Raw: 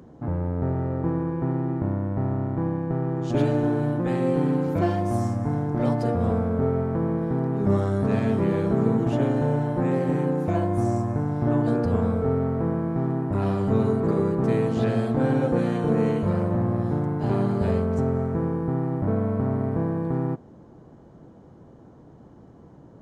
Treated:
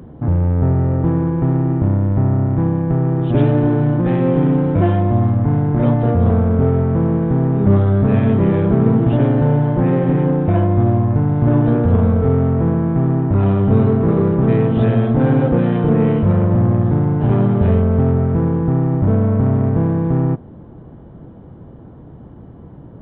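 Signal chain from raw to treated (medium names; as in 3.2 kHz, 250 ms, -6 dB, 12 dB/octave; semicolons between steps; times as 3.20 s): bass shelf 160 Hz +10.5 dB; in parallel at -6 dB: hard clipper -21.5 dBFS, distortion -7 dB; on the sum: resampled via 8 kHz; trim +2.5 dB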